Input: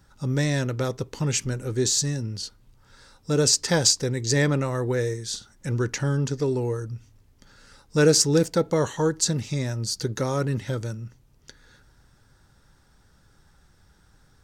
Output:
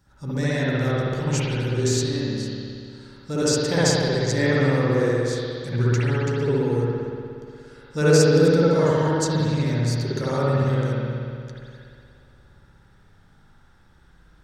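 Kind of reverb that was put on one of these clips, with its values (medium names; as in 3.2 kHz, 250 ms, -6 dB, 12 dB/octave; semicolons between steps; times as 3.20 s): spring tank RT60 2.4 s, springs 59 ms, chirp 30 ms, DRR -9.5 dB; trim -6 dB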